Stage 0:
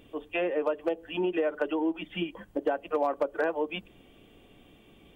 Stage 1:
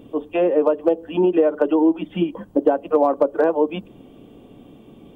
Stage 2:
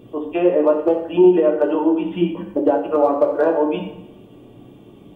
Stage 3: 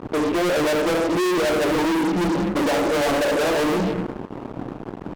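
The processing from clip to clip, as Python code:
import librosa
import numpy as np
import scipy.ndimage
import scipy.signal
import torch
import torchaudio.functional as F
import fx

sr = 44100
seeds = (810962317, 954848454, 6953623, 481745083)

y1 = fx.graphic_eq(x, sr, hz=(125, 250, 500, 1000, 2000), db=(8, 10, 6, 6, -6))
y1 = y1 * 10.0 ** (2.5 / 20.0)
y2 = fx.rev_fdn(y1, sr, rt60_s=0.84, lf_ratio=1.0, hf_ratio=0.85, size_ms=49.0, drr_db=0.0)
y2 = y2 * 10.0 ** (-1.5 / 20.0)
y3 = fx.wiener(y2, sr, points=25)
y3 = fx.fuzz(y3, sr, gain_db=38.0, gate_db=-44.0)
y3 = fx.peak_eq(y3, sr, hz=84.0, db=-6.0, octaves=0.77)
y3 = y3 * 10.0 ** (-6.0 / 20.0)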